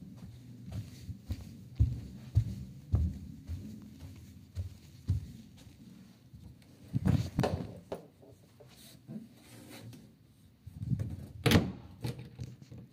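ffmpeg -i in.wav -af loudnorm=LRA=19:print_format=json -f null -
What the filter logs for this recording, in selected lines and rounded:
"input_i" : "-35.6",
"input_tp" : "-11.7",
"input_lra" : "7.7",
"input_thresh" : "-47.8",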